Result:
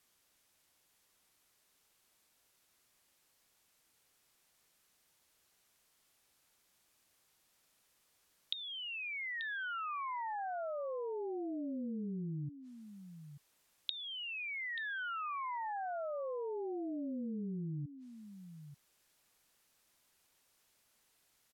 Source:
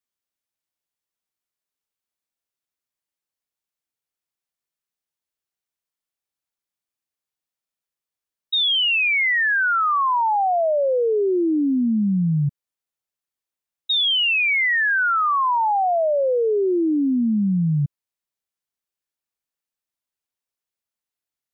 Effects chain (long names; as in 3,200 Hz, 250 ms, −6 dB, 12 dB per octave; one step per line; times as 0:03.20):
gate with flip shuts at −35 dBFS, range −37 dB
treble cut that deepens with the level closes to 2,900 Hz, closed at −58 dBFS
single-tap delay 885 ms −12 dB
level +16.5 dB